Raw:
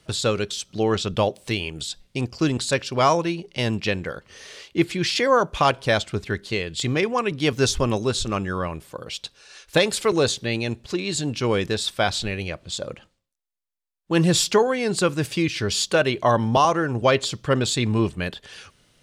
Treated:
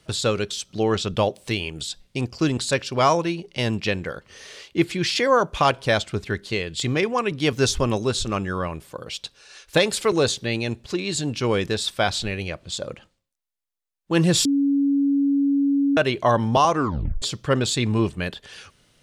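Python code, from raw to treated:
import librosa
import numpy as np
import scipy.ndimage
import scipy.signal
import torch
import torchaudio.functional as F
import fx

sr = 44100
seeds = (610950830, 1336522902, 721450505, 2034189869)

y = fx.edit(x, sr, fx.bleep(start_s=14.45, length_s=1.52, hz=280.0, db=-16.5),
    fx.tape_stop(start_s=16.74, length_s=0.48), tone=tone)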